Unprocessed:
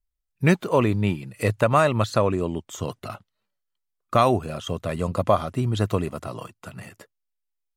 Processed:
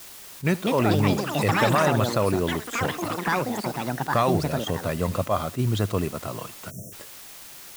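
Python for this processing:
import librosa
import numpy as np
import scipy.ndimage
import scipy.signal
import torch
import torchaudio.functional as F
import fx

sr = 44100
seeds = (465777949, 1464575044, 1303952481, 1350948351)

p1 = fx.over_compress(x, sr, threshold_db=-22.0, ratio=-1.0)
p2 = x + (p1 * librosa.db_to_amplitude(0.5))
p3 = fx.echo_pitch(p2, sr, ms=338, semitones=6, count=3, db_per_echo=-3.0)
p4 = p3 + fx.echo_single(p3, sr, ms=79, db=-21.5, dry=0)
p5 = fx.quant_dither(p4, sr, seeds[0], bits=6, dither='triangular')
p6 = fx.spec_erase(p5, sr, start_s=6.71, length_s=0.21, low_hz=690.0, high_hz=5400.0)
p7 = fx.attack_slew(p6, sr, db_per_s=370.0)
y = p7 * librosa.db_to_amplitude(-7.0)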